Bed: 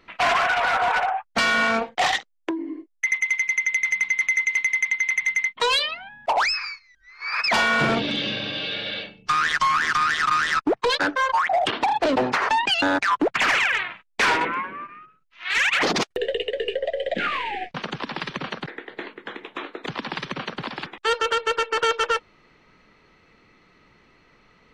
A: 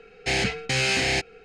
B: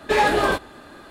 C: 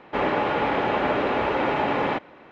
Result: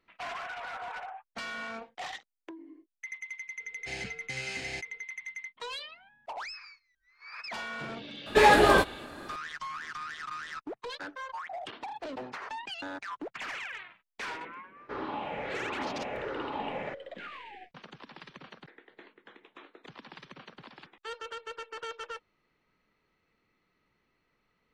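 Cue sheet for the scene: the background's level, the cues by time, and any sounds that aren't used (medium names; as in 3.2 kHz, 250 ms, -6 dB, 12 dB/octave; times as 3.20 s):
bed -18.5 dB
3.60 s: add A -16 dB
8.26 s: add B -0.5 dB
14.76 s: add C -14.5 dB + drifting ripple filter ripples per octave 0.53, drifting -1.4 Hz, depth 10 dB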